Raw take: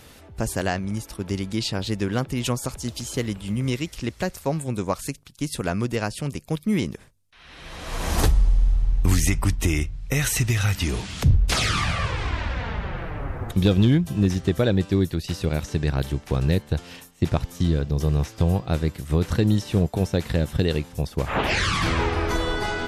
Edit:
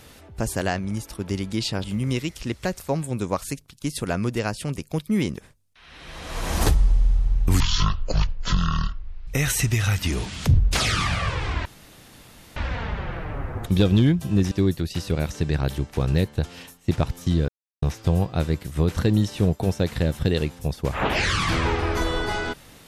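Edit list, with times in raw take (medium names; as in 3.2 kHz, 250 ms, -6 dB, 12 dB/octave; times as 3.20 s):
1.84–3.41 s: delete
9.17–10.04 s: speed 52%
12.42 s: insert room tone 0.91 s
14.37–14.85 s: delete
17.82–18.16 s: mute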